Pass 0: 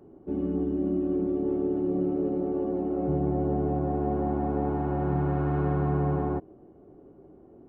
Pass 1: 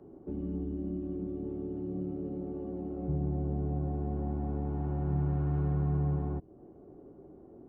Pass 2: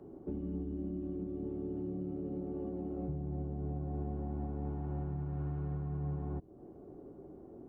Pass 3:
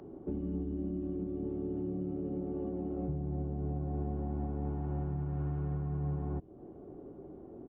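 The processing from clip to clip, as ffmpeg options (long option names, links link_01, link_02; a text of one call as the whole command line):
ffmpeg -i in.wav -filter_complex "[0:a]highshelf=frequency=2400:gain=-11,acrossover=split=180|3000[link_01][link_02][link_03];[link_02]acompressor=threshold=-41dB:ratio=4[link_04];[link_01][link_04][link_03]amix=inputs=3:normalize=0" out.wav
ffmpeg -i in.wav -af "alimiter=level_in=7dB:limit=-24dB:level=0:latency=1:release=439,volume=-7dB,volume=1dB" out.wav
ffmpeg -i in.wav -af "aresample=8000,aresample=44100,acompressor=mode=upward:threshold=-59dB:ratio=2.5,volume=2.5dB" out.wav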